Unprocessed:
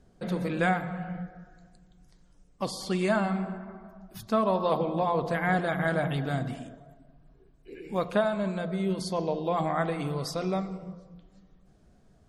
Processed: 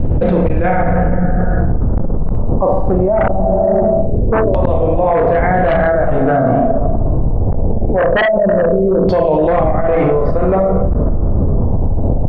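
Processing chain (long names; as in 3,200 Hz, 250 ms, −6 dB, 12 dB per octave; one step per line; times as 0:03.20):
wind on the microphone 97 Hz −27 dBFS
spectral tilt −2.5 dB per octave
four-comb reverb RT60 0.36 s, combs from 26 ms, DRR 1 dB
amplitude tremolo 2.1 Hz, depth 95%
reversed playback
upward compression, threshold −17 dBFS
reversed playback
auto-filter low-pass saw down 0.22 Hz 440–3,100 Hz
gate with flip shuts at −4 dBFS, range −30 dB
parametric band 570 Hz +14.5 dB 1.8 octaves
sine wavefolder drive 10 dB, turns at 5.5 dBFS
envelope flattener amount 100%
level −15 dB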